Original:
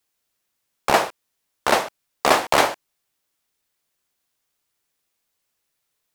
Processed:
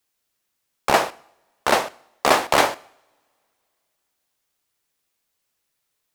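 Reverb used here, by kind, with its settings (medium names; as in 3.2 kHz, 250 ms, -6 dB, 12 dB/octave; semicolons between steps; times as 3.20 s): two-slope reverb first 0.65 s, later 2.9 s, from -27 dB, DRR 19 dB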